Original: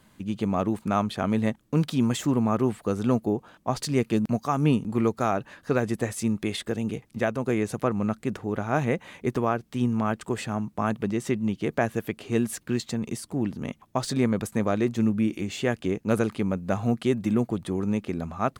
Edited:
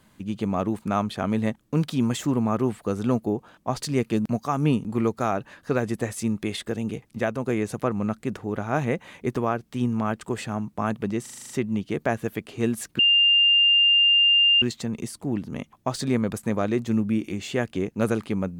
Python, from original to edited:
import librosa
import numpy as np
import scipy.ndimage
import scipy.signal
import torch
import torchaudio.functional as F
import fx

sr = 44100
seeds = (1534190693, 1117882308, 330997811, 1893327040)

y = fx.edit(x, sr, fx.stutter(start_s=11.22, slice_s=0.04, count=8),
    fx.insert_tone(at_s=12.71, length_s=1.63, hz=2800.0, db=-14.5), tone=tone)